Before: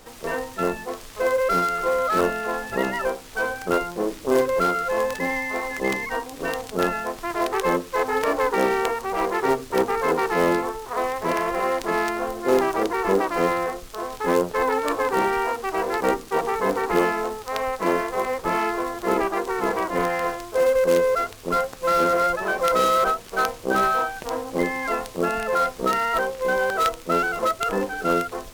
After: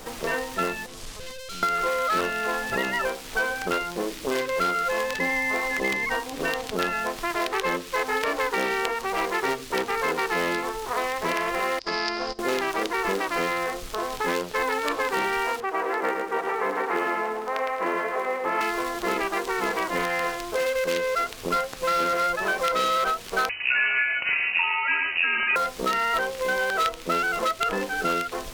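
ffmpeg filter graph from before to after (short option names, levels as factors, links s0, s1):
-filter_complex "[0:a]asettb=1/sr,asplit=3[s0][s1][s2];[s0]atrim=end=0.864[s3];[s1]atrim=start=0.86:end=1.63,asetpts=PTS-STARTPTS,afade=t=in:d=0.004:c=qsin,afade=t=out:st=0.766:d=0.004:c=qsin,lowpass=11000,aeval=exprs='(tanh(44.7*val(0)+0.2)-tanh(0.2))/44.7':c=same,acrossover=split=200|3000[s4][s5][s6];[s5]acompressor=threshold=0.00316:ratio=5:attack=3.2:release=140:knee=2.83:detection=peak[s7];[s4][s7][s6]amix=inputs=3:normalize=0[s8];[s2]atrim=start=1.626[s9];[s3][s8]acrossfade=d=0.004:c1=hsin:c2=qsin[s10];[s10][s9]acrossfade=d=0.004:c1=qsin:c2=hsin,asettb=1/sr,asplit=3[s11][s12][s13];[s11]atrim=end=11.794[s14];[s12]atrim=start=11.79:end=12.39,asetpts=PTS-STARTPTS,afade=t=in:d=0.004:c=qsin,afade=t=out:st=0.596:d=0.004:c=qsin,agate=range=0.0891:threshold=0.0398:ratio=16:release=100:detection=peak,acompressor=threshold=0.0447:ratio=3:attack=3.2:release=140:knee=1:detection=peak,lowpass=f=5000:t=q:w=13[s15];[s13]atrim=start=12.386[s16];[s14][s15]acrossfade=d=0.004:c1=hsin:c2=qsin[s17];[s17][s16]acrossfade=d=0.004:c1=qsin:c2=hsin,asettb=1/sr,asplit=3[s18][s19][s20];[s18]atrim=end=15.604[s21];[s19]atrim=start=15.6:end=18.61,asetpts=PTS-STARTPTS,afade=t=in:d=0.004:c=qsin,afade=t=out:st=3.006:d=0.004:c=qsin,acrossover=split=220 2100:gain=0.126 1 0.126[s22][s23][s24];[s22][s23][s24]amix=inputs=3:normalize=0,aecho=1:1:110|220|330|440:0.596|0.161|0.0434|0.0117,atrim=end_sample=132741[s25];[s20]atrim=start=18.606[s26];[s21][s25]acrossfade=d=0.004:c1=hsin:c2=qsin[s27];[s27][s26]acrossfade=d=0.004:c1=qsin:c2=hsin,asettb=1/sr,asplit=3[s28][s29][s30];[s28]atrim=end=23.494[s31];[s29]atrim=start=23.49:end=25.56,asetpts=PTS-STARTPTS,afade=t=in:d=0.004:c=qsin,afade=t=out:st=2.066:d=0.004:c=qsin,aecho=1:1:108:0.562,atrim=end_sample=91287,lowpass=f=2600:t=q:w=0.5098,lowpass=f=2600:t=q:w=0.6013,lowpass=f=2600:t=q:w=0.9,lowpass=f=2600:t=q:w=2.563,afreqshift=-3000[s32];[s30]atrim=start=25.556[s33];[s31][s32]acrossfade=d=0.004:c1=hsin:c2=qsin[s34];[s34][s33]acrossfade=d=0.004:c1=qsin:c2=hsin,bandreject=f=50:t=h:w=6,bandreject=f=100:t=h:w=6,acrossover=split=1800|4900[s35][s36][s37];[s35]acompressor=threshold=0.0178:ratio=4[s38];[s36]acompressor=threshold=0.02:ratio=4[s39];[s37]acompressor=threshold=0.00316:ratio=4[s40];[s38][s39][s40]amix=inputs=3:normalize=0,volume=2.24"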